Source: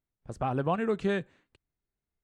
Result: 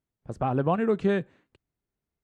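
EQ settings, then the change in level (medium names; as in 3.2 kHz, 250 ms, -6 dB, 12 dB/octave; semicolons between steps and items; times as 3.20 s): high-pass 170 Hz 6 dB/octave; tilt EQ -2 dB/octave; +2.5 dB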